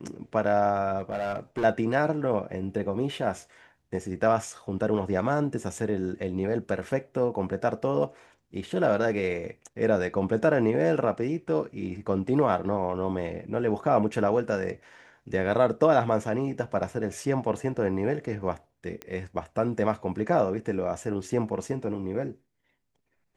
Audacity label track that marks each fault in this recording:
0.990000	1.650000	clipped -25 dBFS
19.020000	19.020000	pop -20 dBFS

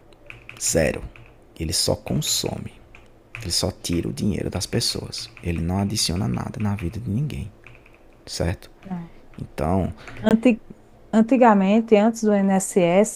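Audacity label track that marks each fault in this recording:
10.290000	10.310000	dropout 18 ms

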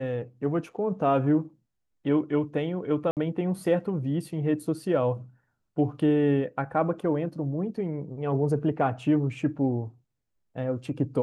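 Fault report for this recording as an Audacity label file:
3.110000	3.170000	dropout 58 ms

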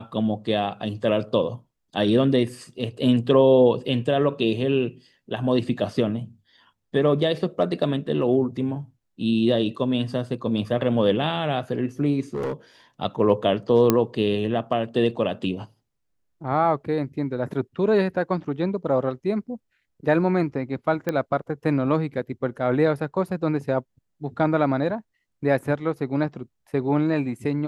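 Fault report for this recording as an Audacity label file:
12.340000	12.530000	clipped -23 dBFS
13.900000	13.900000	pop -4 dBFS
21.090000	21.090000	pop -12 dBFS

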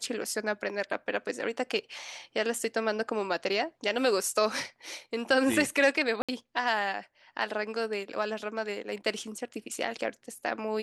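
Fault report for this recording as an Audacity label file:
6.220000	6.290000	dropout 66 ms

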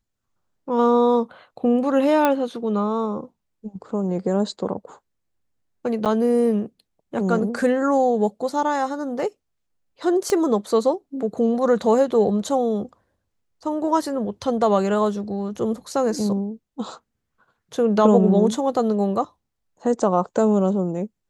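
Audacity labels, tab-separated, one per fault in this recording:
2.250000	2.250000	pop -6 dBFS
6.050000	6.060000	dropout 7.8 ms
10.300000	10.300000	pop -11 dBFS

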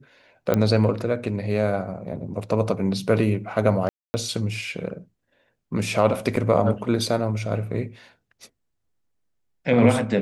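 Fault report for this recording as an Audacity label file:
0.540000	0.540000	pop -8 dBFS
3.890000	4.140000	dropout 250 ms
6.360000	6.360000	dropout 3.2 ms

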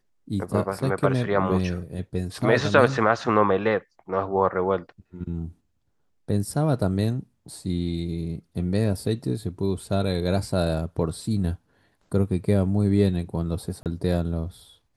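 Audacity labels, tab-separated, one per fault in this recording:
13.830000	13.860000	dropout 28 ms

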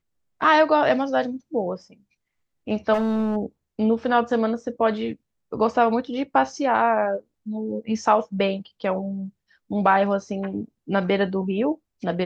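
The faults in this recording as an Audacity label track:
2.930000	3.370000	clipped -19 dBFS

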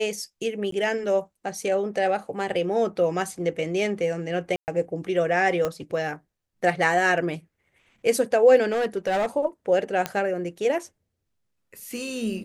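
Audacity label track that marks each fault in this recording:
0.710000	0.720000	dropout 13 ms
4.560000	4.680000	dropout 119 ms
5.650000	5.650000	pop -13 dBFS
8.710000	9.260000	clipped -20 dBFS
10.060000	10.060000	pop -10 dBFS

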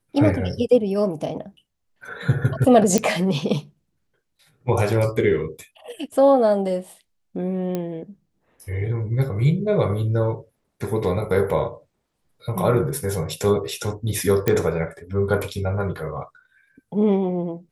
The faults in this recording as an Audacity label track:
2.980000	2.980000	pop -5 dBFS
7.750000	7.750000	pop -13 dBFS
14.480000	14.480000	pop -6 dBFS

